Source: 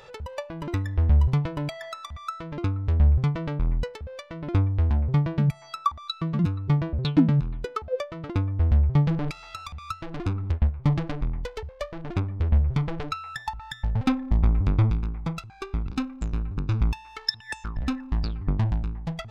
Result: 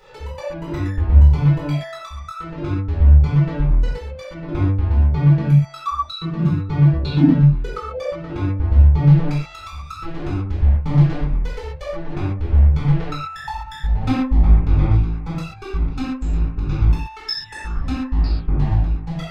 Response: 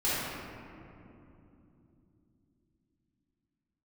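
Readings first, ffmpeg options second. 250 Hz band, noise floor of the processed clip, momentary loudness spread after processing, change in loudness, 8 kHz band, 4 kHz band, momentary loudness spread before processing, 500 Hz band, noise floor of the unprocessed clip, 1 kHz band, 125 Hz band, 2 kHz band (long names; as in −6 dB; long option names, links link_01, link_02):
+7.0 dB, −37 dBFS, 16 LU, +8.0 dB, can't be measured, +3.0 dB, 14 LU, +5.0 dB, −47 dBFS, +4.5 dB, +8.0 dB, +4.0 dB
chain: -filter_complex "[1:a]atrim=start_sample=2205,atrim=end_sample=6615[link_01];[0:a][link_01]afir=irnorm=-1:irlink=0,volume=-4.5dB"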